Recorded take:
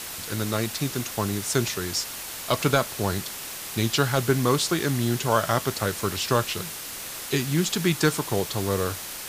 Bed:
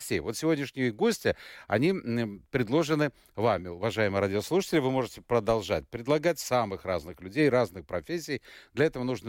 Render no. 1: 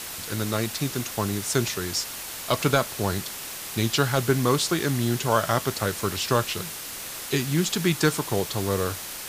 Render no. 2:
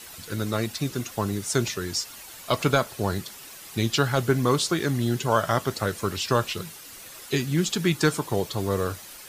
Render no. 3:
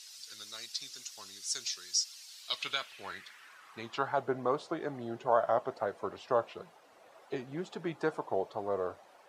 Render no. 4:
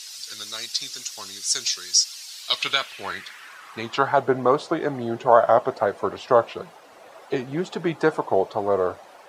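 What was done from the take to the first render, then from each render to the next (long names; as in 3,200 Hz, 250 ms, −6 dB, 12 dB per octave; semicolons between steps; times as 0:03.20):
no processing that can be heard
broadband denoise 10 dB, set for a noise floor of −36 dBFS
band-pass filter sweep 5,100 Hz → 690 Hz, 0:02.24–0:04.29; tape wow and flutter 52 cents
level +12 dB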